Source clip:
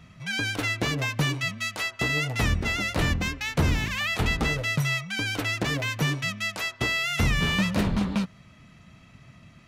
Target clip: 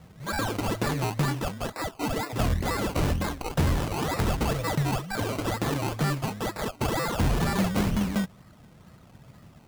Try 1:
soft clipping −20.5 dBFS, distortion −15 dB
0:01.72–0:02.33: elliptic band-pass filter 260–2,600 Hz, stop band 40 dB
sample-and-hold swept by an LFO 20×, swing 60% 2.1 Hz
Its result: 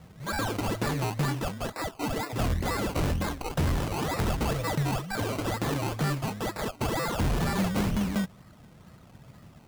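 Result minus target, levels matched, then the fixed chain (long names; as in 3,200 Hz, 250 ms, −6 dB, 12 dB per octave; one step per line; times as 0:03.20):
soft clipping: distortion +10 dB
soft clipping −13.5 dBFS, distortion −25 dB
0:01.72–0:02.33: elliptic band-pass filter 260–2,600 Hz, stop band 40 dB
sample-and-hold swept by an LFO 20×, swing 60% 2.1 Hz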